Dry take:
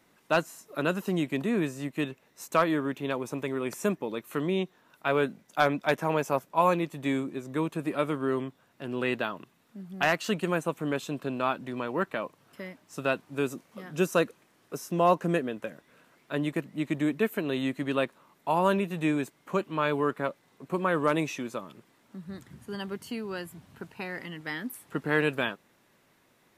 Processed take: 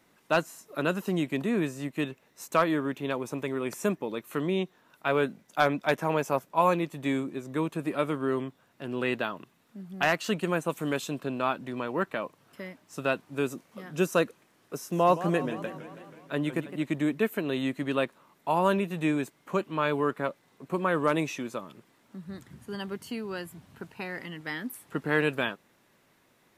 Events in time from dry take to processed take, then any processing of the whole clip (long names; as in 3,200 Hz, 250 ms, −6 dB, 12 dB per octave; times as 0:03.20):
0:10.69–0:11.20: parametric band 12,000 Hz +12 dB → +2 dB 2.7 octaves
0:14.75–0:16.84: feedback echo with a swinging delay time 162 ms, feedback 65%, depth 195 cents, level −13 dB